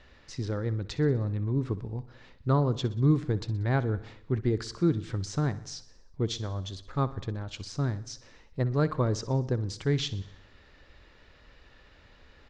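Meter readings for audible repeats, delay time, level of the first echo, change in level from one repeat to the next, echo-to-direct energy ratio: 4, 62 ms, -17.0 dB, -4.5 dB, -15.0 dB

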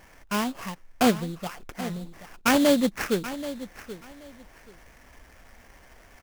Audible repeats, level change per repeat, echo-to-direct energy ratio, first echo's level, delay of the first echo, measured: 2, -13.5 dB, -14.0 dB, -14.0 dB, 780 ms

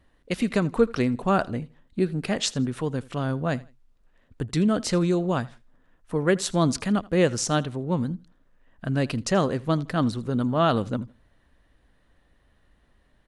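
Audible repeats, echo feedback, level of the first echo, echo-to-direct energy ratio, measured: 2, 29%, -22.0 dB, -21.5 dB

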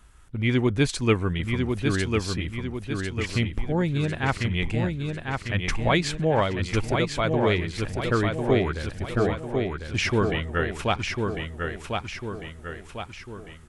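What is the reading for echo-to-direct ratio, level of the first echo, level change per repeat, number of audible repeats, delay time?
-3.5 dB, -4.5 dB, -6.0 dB, 5, 1049 ms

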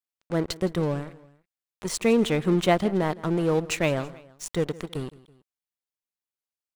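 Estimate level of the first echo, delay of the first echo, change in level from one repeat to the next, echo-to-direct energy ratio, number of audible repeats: -20.0 dB, 164 ms, -5.5 dB, -19.0 dB, 2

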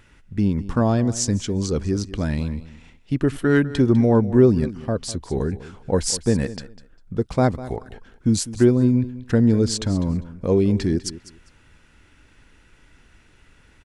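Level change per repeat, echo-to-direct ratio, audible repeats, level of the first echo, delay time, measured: -14.5 dB, -16.0 dB, 2, -16.0 dB, 200 ms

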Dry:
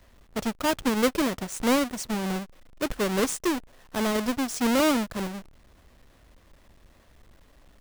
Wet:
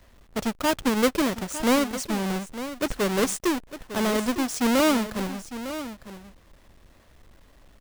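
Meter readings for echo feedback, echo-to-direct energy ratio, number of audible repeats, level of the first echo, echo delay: no regular repeats, -12.5 dB, 1, -12.5 dB, 904 ms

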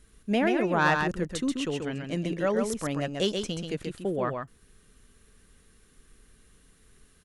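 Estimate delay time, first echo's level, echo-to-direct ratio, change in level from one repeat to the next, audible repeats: 133 ms, -5.0 dB, -5.0 dB, no regular repeats, 1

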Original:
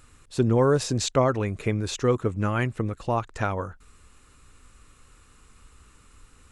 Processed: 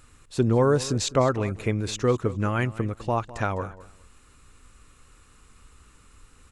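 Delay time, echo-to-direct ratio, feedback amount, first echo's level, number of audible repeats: 205 ms, -17.5 dB, 19%, -17.5 dB, 2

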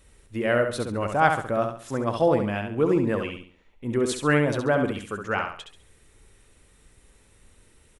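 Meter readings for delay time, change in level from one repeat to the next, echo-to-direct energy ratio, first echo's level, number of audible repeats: 68 ms, -9.5 dB, -5.5 dB, -6.0 dB, 4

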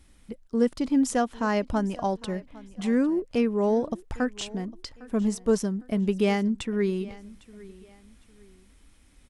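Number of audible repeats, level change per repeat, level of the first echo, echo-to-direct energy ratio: 2, -10.0 dB, -20.5 dB, -20.0 dB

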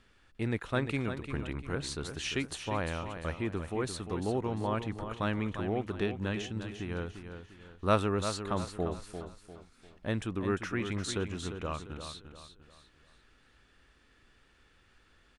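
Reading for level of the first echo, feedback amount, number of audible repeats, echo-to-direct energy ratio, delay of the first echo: -9.0 dB, 38%, 4, -8.5 dB, 348 ms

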